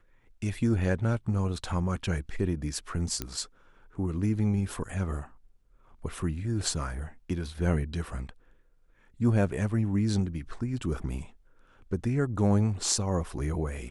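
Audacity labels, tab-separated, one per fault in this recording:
3.220000	3.220000	click −16 dBFS

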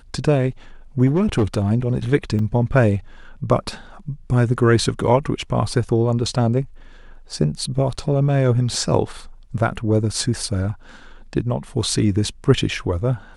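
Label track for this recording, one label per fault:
1.060000	1.720000	clipping −13 dBFS
2.390000	2.390000	drop-out 2.7 ms

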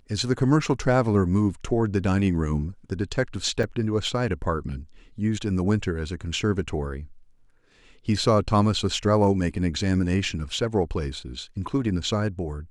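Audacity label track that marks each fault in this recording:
3.630000	3.630000	drop-out 4.9 ms

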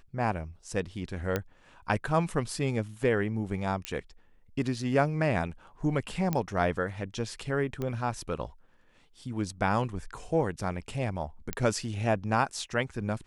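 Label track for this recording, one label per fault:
1.360000	1.360000	click −14 dBFS
3.850000	3.850000	click −15 dBFS
6.330000	6.330000	click −15 dBFS
7.820000	7.820000	click −21 dBFS
11.530000	11.530000	click −15 dBFS

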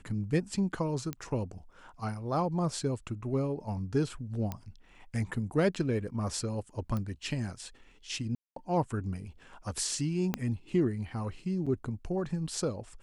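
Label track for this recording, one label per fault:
1.130000	1.130000	click −21 dBFS
4.520000	4.520000	click −21 dBFS
6.970000	6.970000	click −23 dBFS
8.350000	8.560000	drop-out 213 ms
10.340000	10.340000	click −15 dBFS
11.660000	11.670000	drop-out 5.7 ms

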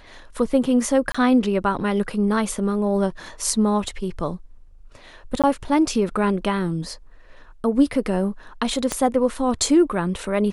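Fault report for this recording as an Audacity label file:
1.120000	1.150000	drop-out 25 ms
5.420000	5.440000	drop-out 17 ms
8.920000	8.920000	click −8 dBFS

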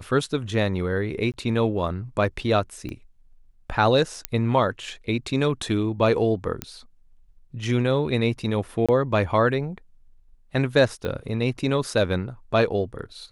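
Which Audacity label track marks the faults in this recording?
1.320000	1.340000	drop-out 18 ms
2.890000	2.890000	click −22 dBFS
4.250000	4.250000	click −7 dBFS
6.620000	6.620000	click −12 dBFS
8.860000	8.890000	drop-out 26 ms
11.050000	11.050000	click −17 dBFS

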